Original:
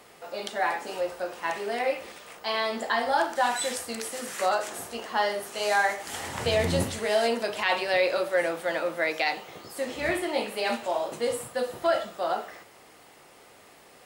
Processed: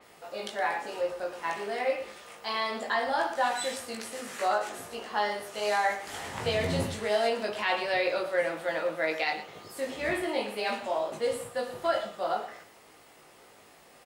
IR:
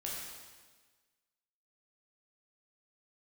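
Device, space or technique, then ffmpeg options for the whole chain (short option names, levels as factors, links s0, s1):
slapback doubling: -filter_complex "[0:a]asplit=3[s0][s1][s2];[s1]adelay=19,volume=0.631[s3];[s2]adelay=116,volume=0.251[s4];[s0][s3][s4]amix=inputs=3:normalize=0,adynamicequalizer=threshold=0.00562:dfrequency=5300:dqfactor=0.7:tfrequency=5300:tqfactor=0.7:attack=5:release=100:ratio=0.375:range=2.5:mode=cutabove:tftype=highshelf,volume=0.631"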